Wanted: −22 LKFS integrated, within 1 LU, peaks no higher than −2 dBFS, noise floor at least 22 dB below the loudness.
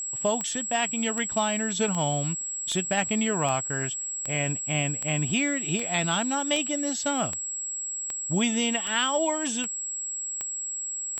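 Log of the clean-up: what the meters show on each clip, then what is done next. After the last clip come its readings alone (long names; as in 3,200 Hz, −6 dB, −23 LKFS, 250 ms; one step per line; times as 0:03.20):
number of clicks 15; interfering tone 7,700 Hz; level of the tone −30 dBFS; integrated loudness −26.5 LKFS; sample peak −11.0 dBFS; target loudness −22.0 LKFS
→ click removal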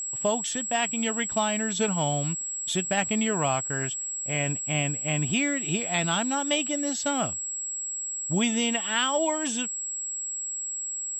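number of clicks 0; interfering tone 7,700 Hz; level of the tone −30 dBFS
→ notch filter 7,700 Hz, Q 30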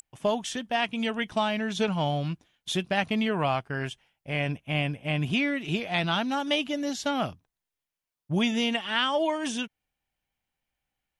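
interfering tone none found; integrated loudness −28.0 LKFS; sample peak −11.0 dBFS; target loudness −22.0 LKFS
→ level +6 dB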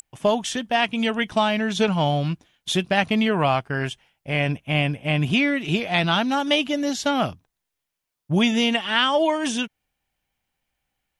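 integrated loudness −22.0 LKFS; sample peak −5.0 dBFS; background noise floor −82 dBFS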